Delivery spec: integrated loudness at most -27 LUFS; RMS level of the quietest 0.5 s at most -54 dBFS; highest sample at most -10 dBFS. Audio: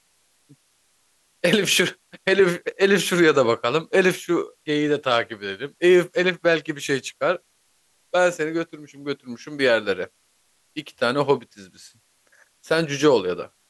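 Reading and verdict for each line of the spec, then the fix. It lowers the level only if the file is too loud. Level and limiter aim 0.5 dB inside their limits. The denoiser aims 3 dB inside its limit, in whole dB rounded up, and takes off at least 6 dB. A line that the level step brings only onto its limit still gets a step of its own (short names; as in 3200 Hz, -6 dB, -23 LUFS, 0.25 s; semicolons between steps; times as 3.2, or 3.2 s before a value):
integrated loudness -21.5 LUFS: fail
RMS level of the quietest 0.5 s -64 dBFS: OK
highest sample -4.0 dBFS: fail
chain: gain -6 dB; limiter -10.5 dBFS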